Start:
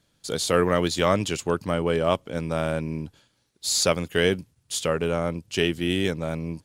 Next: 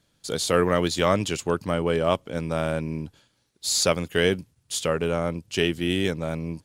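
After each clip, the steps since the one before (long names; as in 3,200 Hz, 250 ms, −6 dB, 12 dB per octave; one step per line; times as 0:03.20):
no processing that can be heard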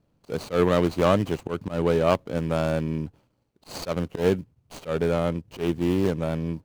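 running median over 25 samples
volume swells 118 ms
level +2.5 dB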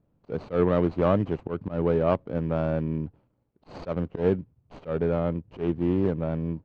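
head-to-tape spacing loss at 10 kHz 38 dB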